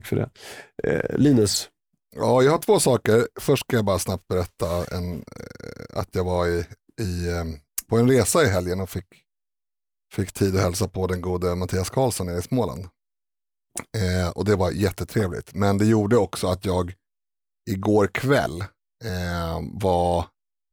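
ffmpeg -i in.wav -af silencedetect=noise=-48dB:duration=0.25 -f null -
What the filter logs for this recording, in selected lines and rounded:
silence_start: 1.68
silence_end: 2.12 | silence_duration: 0.44
silence_start: 9.18
silence_end: 10.11 | silence_duration: 0.93
silence_start: 12.89
silence_end: 13.76 | silence_duration: 0.87
silence_start: 16.94
silence_end: 17.67 | silence_duration: 0.73
silence_start: 18.69
silence_end: 19.01 | silence_duration: 0.32
silence_start: 20.28
silence_end: 20.73 | silence_duration: 0.45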